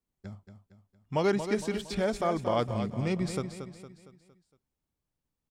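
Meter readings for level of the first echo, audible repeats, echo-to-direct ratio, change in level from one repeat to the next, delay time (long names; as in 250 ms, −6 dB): −9.0 dB, 4, −8.0 dB, −6.5 dB, 230 ms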